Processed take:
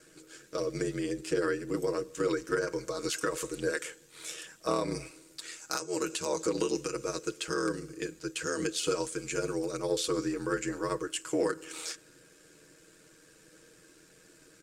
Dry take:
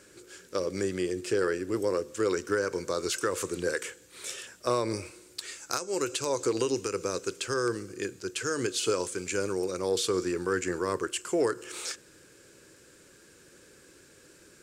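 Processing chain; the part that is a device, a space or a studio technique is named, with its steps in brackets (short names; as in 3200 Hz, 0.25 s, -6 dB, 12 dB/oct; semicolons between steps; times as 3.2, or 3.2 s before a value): ring-modulated robot voice (ring modulator 41 Hz; comb 6.3 ms); gain -1 dB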